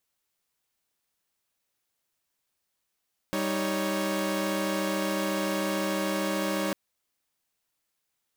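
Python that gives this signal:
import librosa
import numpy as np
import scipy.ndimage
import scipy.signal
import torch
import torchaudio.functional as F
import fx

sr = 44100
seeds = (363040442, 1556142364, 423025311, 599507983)

y = fx.chord(sr, length_s=3.4, notes=(55, 63, 73), wave='saw', level_db=-28.5)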